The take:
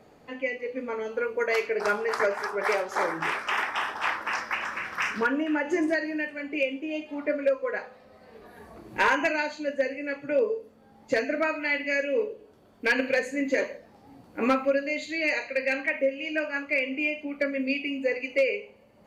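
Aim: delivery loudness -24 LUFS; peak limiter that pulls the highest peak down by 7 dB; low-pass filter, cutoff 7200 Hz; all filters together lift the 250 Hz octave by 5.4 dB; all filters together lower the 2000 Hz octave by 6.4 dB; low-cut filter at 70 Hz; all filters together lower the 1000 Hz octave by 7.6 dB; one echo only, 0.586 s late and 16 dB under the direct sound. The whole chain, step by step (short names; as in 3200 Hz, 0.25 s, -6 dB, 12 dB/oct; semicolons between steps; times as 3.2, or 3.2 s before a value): HPF 70 Hz; LPF 7200 Hz; bell 250 Hz +7 dB; bell 1000 Hz -8.5 dB; bell 2000 Hz -5.5 dB; limiter -18.5 dBFS; echo 0.586 s -16 dB; gain +5.5 dB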